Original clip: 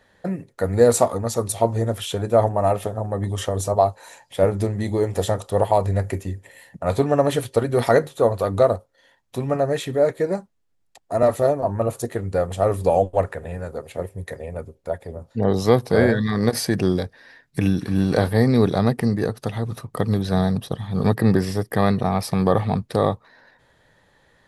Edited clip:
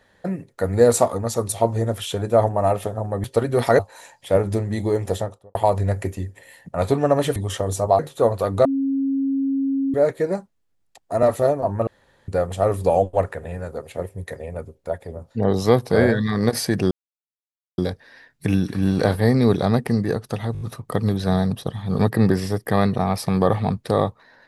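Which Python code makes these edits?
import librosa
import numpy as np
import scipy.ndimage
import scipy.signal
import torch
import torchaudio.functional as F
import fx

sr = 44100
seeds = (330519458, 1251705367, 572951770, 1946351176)

y = fx.studio_fade_out(x, sr, start_s=5.09, length_s=0.54)
y = fx.edit(y, sr, fx.swap(start_s=3.24, length_s=0.63, other_s=7.44, other_length_s=0.55),
    fx.bleep(start_s=8.65, length_s=1.29, hz=272.0, db=-18.5),
    fx.room_tone_fill(start_s=11.87, length_s=0.41),
    fx.insert_silence(at_s=16.91, length_s=0.87),
    fx.stutter(start_s=19.66, slice_s=0.02, count=5), tone=tone)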